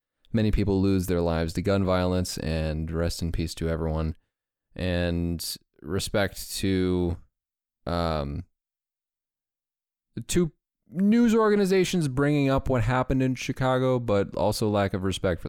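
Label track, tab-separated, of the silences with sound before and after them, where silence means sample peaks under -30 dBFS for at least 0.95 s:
8.400000	10.170000	silence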